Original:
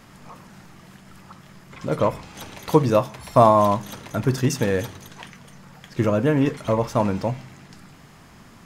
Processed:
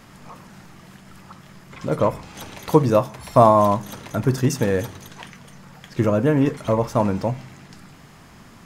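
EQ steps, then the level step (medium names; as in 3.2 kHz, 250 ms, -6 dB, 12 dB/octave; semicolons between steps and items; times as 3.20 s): dynamic bell 3.2 kHz, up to -4 dB, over -40 dBFS, Q 0.74; +1.5 dB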